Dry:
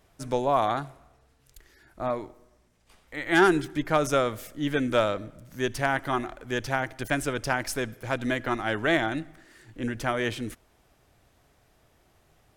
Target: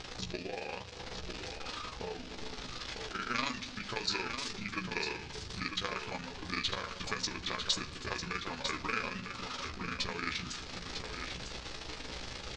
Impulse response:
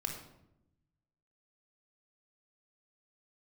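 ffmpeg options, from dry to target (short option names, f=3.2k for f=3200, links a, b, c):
-filter_complex "[0:a]aeval=exprs='val(0)+0.5*0.0158*sgn(val(0))':c=same,tremolo=f=26:d=1,lowpass=f=7k:w=0.5412,lowpass=f=7k:w=1.3066,acrossover=split=2600[a][b];[a]acompressor=threshold=-39dB:ratio=6[c];[c][b]amix=inputs=2:normalize=0,aemphasis=mode=production:type=75kf,asetrate=31183,aresample=44100,atempo=1.41421,asplit=2[d][e];[e]adelay=16,volume=-6dB[f];[d][f]amix=inputs=2:normalize=0,aecho=1:1:950:0.447,asplit=2[g][h];[1:a]atrim=start_sample=2205[i];[h][i]afir=irnorm=-1:irlink=0,volume=-11dB[j];[g][j]amix=inputs=2:normalize=0,volume=-3.5dB"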